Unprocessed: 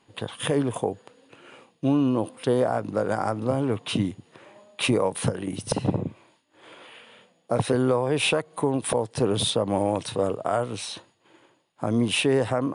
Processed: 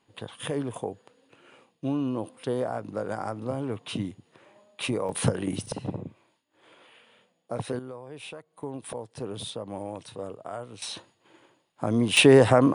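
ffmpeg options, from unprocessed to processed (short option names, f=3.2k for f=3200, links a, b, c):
-af "asetnsamples=n=441:p=0,asendcmd='5.09 volume volume 1dB;5.66 volume volume -8.5dB;7.79 volume volume -18.5dB;8.63 volume volume -12dB;10.82 volume volume -1dB;12.17 volume volume 6.5dB',volume=-6.5dB"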